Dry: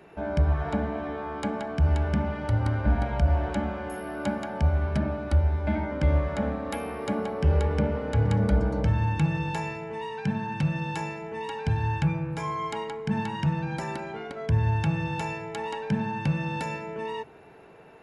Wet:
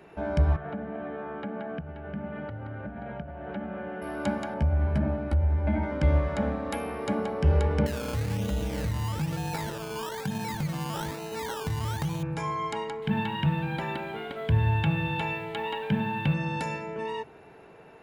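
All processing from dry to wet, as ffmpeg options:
-filter_complex "[0:a]asettb=1/sr,asplit=3[a][b][c];[a]atrim=end=0.564[d];[b]atrim=start=0.56:end=4.02,asetpts=PTS-STARTPTS,afade=t=in:d=0.004:c=qsin,afade=t=out:st=3.456:d=0.004:c=qsin,acompressor=threshold=-29dB:ratio=5:attack=3.2:release=140:knee=1:detection=peak,highpass=150,equalizer=f=180:t=q:w=4:g=5,equalizer=f=310:t=q:w=4:g=-4,equalizer=f=1k:t=q:w=4:g=-10,equalizer=f=2.2k:t=q:w=4:g=-5,lowpass=f=2.7k:w=0.5412,lowpass=f=2.7k:w=1.3066[e];[c]atrim=start=4.016[f];[d][e]acrossfade=d=0.004:c1=hsin:c2=qsin[g];[g][f]acrossfade=d=0.004:c1=qsin:c2=hsin,asettb=1/sr,asplit=3[h][i][j];[h]atrim=end=4.544[k];[i]atrim=start=4.54:end=5.83,asetpts=PTS-STARTPTS,afade=t=in:d=0.004:c=qsin,afade=t=out:st=1.286:d=0.004:c=qsin,equalizer=f=6.1k:w=0.61:g=-11,asplit=2[l][m];[m]adelay=14,volume=-8.5dB[n];[l][n]amix=inputs=2:normalize=0,atrim=end_sample=56889,acompressor=threshold=-20dB:ratio=4:attack=3.2:release=140:knee=1:detection=peak[o];[j]atrim=start=5.826[p];[k][o]acrossfade=d=0.004:c1=hsin:c2=qsin[q];[q][p]acrossfade=d=0.004:c1=qsin:c2=hsin,asettb=1/sr,asplit=3[r][s][t];[r]atrim=end=7.864[u];[s]atrim=start=7.86:end=12.23,asetpts=PTS-STARTPTS,afade=t=in:d=0.004:c=qsin,afade=t=out:st=4.366:d=0.004:c=qsin,acompressor=threshold=-28dB:ratio=2.5:attack=3.2:release=140:knee=1:detection=peak,acrusher=samples=18:mix=1:aa=0.000001:lfo=1:lforange=10.8:lforate=1.1[v];[t]atrim=start=12.226[w];[u][v]acrossfade=d=0.004:c1=hsin:c2=qsin[x];[x][w]acrossfade=d=0.004:c1=qsin:c2=hsin,asettb=1/sr,asplit=3[y][z][aa];[y]atrim=end=13.024[ab];[z]atrim=start=13.02:end=16.34,asetpts=PTS-STARTPTS,afade=t=in:d=0.004:c=qsin,afade=t=out:st=3.316:d=0.004:c=qsin,acrusher=bits=7:mix=0:aa=0.5,highshelf=f=4.4k:t=q:w=3:g=-9[ac];[aa]atrim=start=16.336[ad];[ab][ac]acrossfade=d=0.004:c1=hsin:c2=qsin[ae];[ae][ad]acrossfade=d=0.004:c1=qsin:c2=hsin"

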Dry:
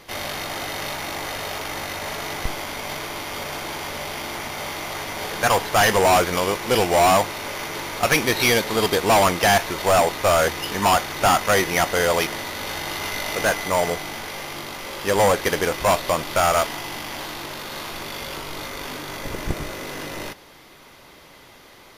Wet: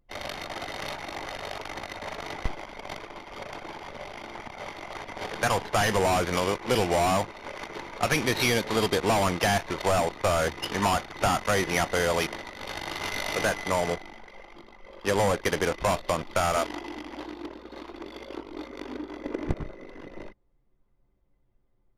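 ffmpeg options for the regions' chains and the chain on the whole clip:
-filter_complex "[0:a]asettb=1/sr,asplit=3[a][b][c];[a]atrim=end=16.564[d];[b]atrim=start=16.56:end=19.49,asetpts=PTS-STARTPTS,afade=t=in:d=0.004:c=qsin,afade=t=out:st=2.926:d=0.004:c=qsin,lowshelf=f=190:t=q:w=3:g=-13.5,aeval=exprs='val(0)+0.00501*(sin(2*PI*60*n/s)+sin(2*PI*2*60*n/s)/2+sin(2*PI*3*60*n/s)/3+sin(2*PI*4*60*n/s)/4+sin(2*PI*5*60*n/s)/5)':c=same[e];[c]atrim=start=19.486[f];[d][e]acrossfade=d=0.004:c1=hsin:c2=qsin[g];[g][f]acrossfade=d=0.004:c1=qsin:c2=hsin,anlmdn=158,lowpass=12k,acrossover=split=280[h][i];[i]acompressor=threshold=-21dB:ratio=3[j];[h][j]amix=inputs=2:normalize=0,volume=-2dB"

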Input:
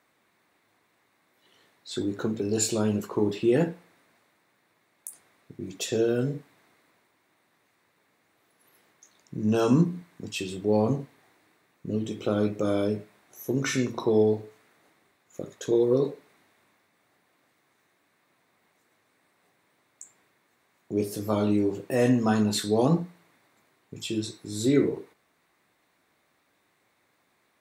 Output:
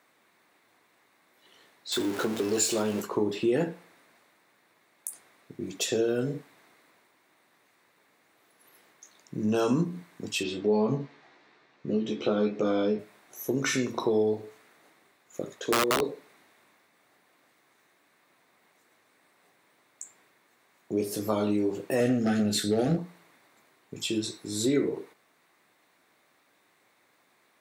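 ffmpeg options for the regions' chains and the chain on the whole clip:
-filter_complex "[0:a]asettb=1/sr,asplit=3[a][b][c];[a]atrim=end=1.924[d];[b]atrim=start=1.92:end=3.02,asetpts=PTS-STARTPTS,afade=t=in:d=0.004:c=qsin,afade=t=out:st=1.096:d=0.004:c=qsin,aeval=exprs='val(0)+0.5*0.0237*sgn(val(0))':c=same,equalizer=f=130:t=o:w=1.6:g=-7[e];[c]atrim=start=3.016[f];[d][e]acrossfade=d=0.004:c1=hsin:c2=qsin[g];[g][f]acrossfade=d=0.004:c1=qsin:c2=hsin,asettb=1/sr,asplit=3[h][i][j];[h]atrim=end=10.434[k];[i]atrim=start=10.43:end=12.99,asetpts=PTS-STARTPTS,afade=t=in:d=0.004:c=qsin,afade=t=out:st=2.556:d=0.004:c=qsin,lowpass=f=5.5k:w=0.5412,lowpass=f=5.5k:w=1.3066,asplit=2[l][m];[m]adelay=14,volume=-3dB[n];[l][n]amix=inputs=2:normalize=0,atrim=end_sample=112896[o];[j]atrim=start=12.986[p];[k][o]acrossfade=d=0.004:c1=hsin:c2=qsin[q];[q][p]acrossfade=d=0.004:c1=qsin:c2=hsin,asettb=1/sr,asplit=3[r][s][t];[r]atrim=end=15.604[u];[s]atrim=start=15.6:end=16.09,asetpts=PTS-STARTPTS,afade=t=in:d=0.004:c=qsin,afade=t=out:st=0.486:d=0.004:c=qsin,acrossover=split=5100[v][w];[w]acompressor=threshold=-55dB:ratio=4:attack=1:release=60[x];[v][x]amix=inputs=2:normalize=0,highpass=170,aeval=exprs='(mod(6.31*val(0)+1,2)-1)/6.31':c=same[y];[t]atrim=start=16.086[z];[u][y]acrossfade=d=0.004:c1=hsin:c2=qsin[aa];[aa][z]acrossfade=d=0.004:c1=qsin:c2=hsin,asettb=1/sr,asplit=3[ab][ac][ad];[ab]atrim=end=22.004[ae];[ac]atrim=start=22:end=22.99,asetpts=PTS-STARTPTS,afade=t=in:d=0.004:c=qsin,afade=t=out:st=0.986:d=0.004:c=qsin,lowshelf=f=240:g=7.5,aeval=exprs='clip(val(0),-1,0.112)':c=same,asuperstop=centerf=1000:order=4:qfactor=1.9[af];[ad]atrim=start=22.986[ag];[ae][af]acrossfade=d=0.004:c1=hsin:c2=qsin[ah];[ah][ag]acrossfade=d=0.004:c1=qsin:c2=hsin,highpass=f=220:p=1,acompressor=threshold=-29dB:ratio=2,volume=3.5dB"

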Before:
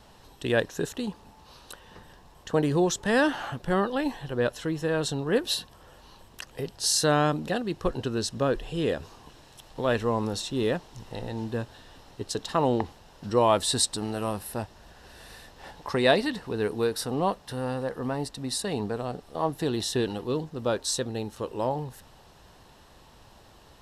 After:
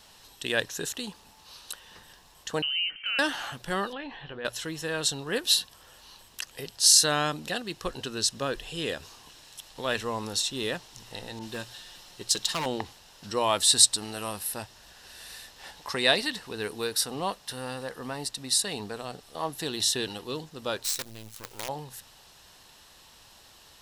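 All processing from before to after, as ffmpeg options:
-filter_complex "[0:a]asettb=1/sr,asplit=3[a][b][c];[a]atrim=end=2.624[d];[b]atrim=start=2.62:end=3.19,asetpts=PTS-STARTPTS,afade=t=in:d=0.004:c=qsin,afade=t=out:st=0.566:d=0.004:c=qsin,highpass=51,lowpass=f=2.7k:t=q:w=0.5098,lowpass=f=2.7k:t=q:w=0.6013,lowpass=f=2.7k:t=q:w=0.9,lowpass=f=2.7k:t=q:w=2.563,afreqshift=-3200,acompressor=threshold=-35dB:ratio=2.5:attack=3.2:release=140:knee=1:detection=peak[e];[c]atrim=start=3.186[f];[d][e]acrossfade=d=0.004:c1=hsin:c2=qsin[g];[g][f]acrossfade=d=0.004:c1=qsin:c2=hsin,asettb=1/sr,asplit=3[h][i][j];[h]atrim=end=3.934[k];[i]atrim=start=3.93:end=4.45,asetpts=PTS-STARTPTS,afade=t=in:d=0.004:c=qsin,afade=t=out:st=0.516:d=0.004:c=qsin,lowpass=f=3.2k:w=0.5412,lowpass=f=3.2k:w=1.3066,acompressor=threshold=-29dB:ratio=4:attack=3.2:release=140:knee=1:detection=peak,asplit=2[l][m];[m]adelay=18,volume=-12.5dB[n];[l][n]amix=inputs=2:normalize=0,atrim=end_sample=22932[o];[j]atrim=start=4.446[p];[k][o]acrossfade=d=0.004:c1=hsin:c2=qsin[q];[q][p]acrossfade=d=0.004:c1=qsin:c2=hsin,asettb=1/sr,asplit=3[r][s][t];[r]atrim=end=11.394[u];[s]atrim=start=11.39:end=12.66,asetpts=PTS-STARTPTS,afade=t=in:d=0.004:c=qsin,afade=t=out:st=1.266:d=0.004:c=qsin,aecho=1:1:5.6:0.38,atrim=end_sample=56007,volume=22.5dB,asoftclip=hard,volume=-22.5dB,adynamicequalizer=threshold=0.00562:dfrequency=2300:dqfactor=0.7:tfrequency=2300:tqfactor=0.7:attack=5:release=100:ratio=0.375:range=2:mode=boostabove:tftype=highshelf[v];[t]atrim=start=12.656[w];[u][v]acrossfade=d=0.004:c1=hsin:c2=qsin[x];[x][w]acrossfade=d=0.004:c1=qsin:c2=hsin,asettb=1/sr,asplit=3[y][z][aa];[y]atrim=end=20.844[ab];[z]atrim=start=20.84:end=21.69,asetpts=PTS-STARTPTS,afade=t=in:d=0.004:c=qsin,afade=t=out:st=0.846:d=0.004:c=qsin,equalizer=f=110:w=5.7:g=11.5,acompressor=threshold=-37dB:ratio=2:attack=3.2:release=140:knee=1:detection=peak,acrusher=bits=6:dc=4:mix=0:aa=0.000001[ac];[aa]atrim=start=21.686[ad];[ab][ac]acrossfade=d=0.004:c1=hsin:c2=qsin[ae];[ae][ad]acrossfade=d=0.004:c1=qsin:c2=hsin,tiltshelf=f=1.5k:g=-8,bandreject=f=60:t=h:w=6,bandreject=f=120:t=h:w=6"

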